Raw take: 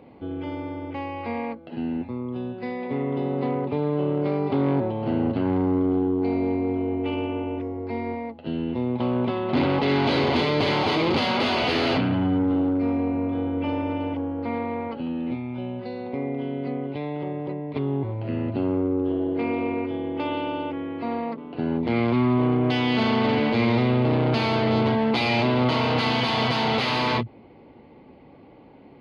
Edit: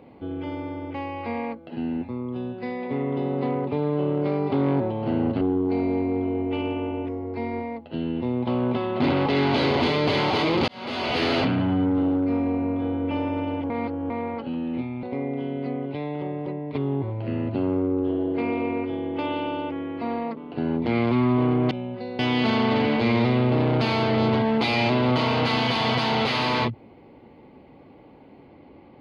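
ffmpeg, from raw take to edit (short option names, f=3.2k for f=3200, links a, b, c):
-filter_complex "[0:a]asplit=8[a][b][c][d][e][f][g][h];[a]atrim=end=5.412[i];[b]atrim=start=5.938:end=11.21,asetpts=PTS-STARTPTS,afade=t=out:st=5.268:d=0.004:c=hsin[j];[c]atrim=start=11.21:end=14.232,asetpts=PTS-STARTPTS,afade=t=in:d=0.55[k];[d]atrim=start=14.228:end=14.632,asetpts=PTS-STARTPTS,areverse[l];[e]atrim=start=14.628:end=15.562[m];[f]atrim=start=16.038:end=22.722[n];[g]atrim=start=15.558:end=16.042[o];[h]atrim=start=22.718[p];[j][k]concat=n=2:v=0:a=1[q];[i][q]acrossfade=d=0.004:c1=hsin:c2=hsin[r];[r][l]acrossfade=d=0.004:c1=hsin:c2=hsin[s];[s][m]acrossfade=d=0.004:c1=hsin:c2=hsin[t];[t][n]acrossfade=d=0.004:c1=hsin:c2=hsin[u];[u][o]acrossfade=d=0.004:c1=hsin:c2=hsin[v];[v][p]acrossfade=d=0.004:c1=hsin:c2=hsin"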